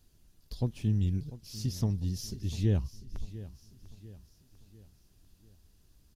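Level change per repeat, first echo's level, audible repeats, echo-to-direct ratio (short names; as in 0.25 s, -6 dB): -6.5 dB, -16.0 dB, 3, -15.0 dB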